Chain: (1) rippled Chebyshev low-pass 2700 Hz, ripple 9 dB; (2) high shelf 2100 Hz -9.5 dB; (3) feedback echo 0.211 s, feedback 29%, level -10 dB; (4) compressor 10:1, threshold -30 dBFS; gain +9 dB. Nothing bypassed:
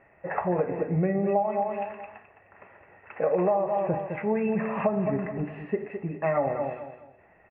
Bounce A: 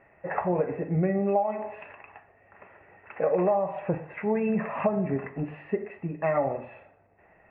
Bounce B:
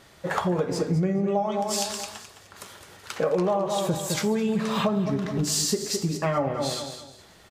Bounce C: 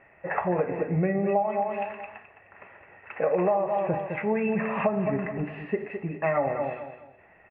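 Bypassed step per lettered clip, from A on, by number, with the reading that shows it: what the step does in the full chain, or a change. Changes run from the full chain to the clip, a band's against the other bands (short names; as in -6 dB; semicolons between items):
3, momentary loudness spread change +1 LU; 1, 500 Hz band -3.0 dB; 2, 2 kHz band +4.0 dB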